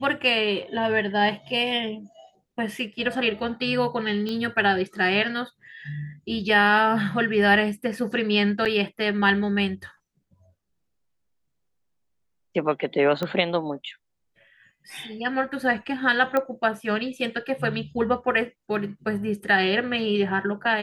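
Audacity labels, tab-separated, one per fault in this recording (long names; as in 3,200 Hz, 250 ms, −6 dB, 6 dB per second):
4.290000	4.290000	click −18 dBFS
8.650000	8.660000	drop-out 7.4 ms
13.230000	13.230000	click −15 dBFS
16.370000	16.370000	click −12 dBFS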